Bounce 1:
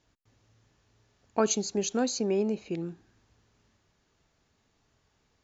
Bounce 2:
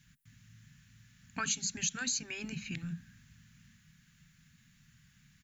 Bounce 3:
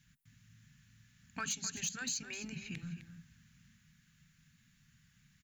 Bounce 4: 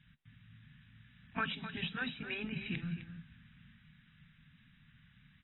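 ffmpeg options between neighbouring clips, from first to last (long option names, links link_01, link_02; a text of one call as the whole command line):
ffmpeg -i in.wav -af "firequalizer=gain_entry='entry(100,0);entry(150,13);entry(240,1);entry(340,-28);entry(620,-26);entry(1600,5);entry(4900,-1);entry(9900,12)':delay=0.05:min_phase=1,afftfilt=real='re*lt(hypot(re,im),0.251)':imag='im*lt(hypot(re,im),0.251)':win_size=1024:overlap=0.75,acompressor=threshold=-39dB:ratio=2,volume=4.5dB" out.wav
ffmpeg -i in.wav -af "asoftclip=type=hard:threshold=-26dB,aecho=1:1:257:0.266,volume=-4dB" out.wav
ffmpeg -i in.wav -af "volume=4.5dB" -ar 22050 -c:a aac -b:a 16k out.aac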